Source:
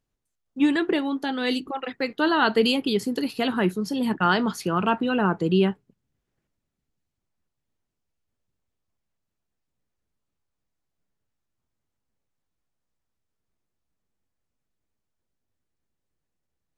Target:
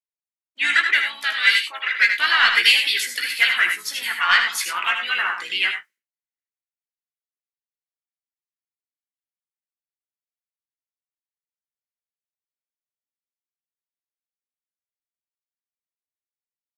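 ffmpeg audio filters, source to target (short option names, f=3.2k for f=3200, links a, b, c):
-filter_complex "[0:a]agate=range=-33dB:threshold=-40dB:ratio=3:detection=peak,highpass=f=2k:t=q:w=5.7,aemphasis=mode=production:type=cd,asplit=2[a][b];[b]asoftclip=type=tanh:threshold=-15dB,volume=-8dB[c];[a][c]amix=inputs=2:normalize=0,asplit=3[d][e][f];[e]asetrate=35002,aresample=44100,atempo=1.25992,volume=-7dB[g];[f]asetrate=52444,aresample=44100,atempo=0.840896,volume=-14dB[h];[d][g][h]amix=inputs=3:normalize=0,asplit=2[i][j];[j]adelay=17,volume=-8dB[k];[i][k]amix=inputs=2:normalize=0,aecho=1:1:78|96:0.422|0.282"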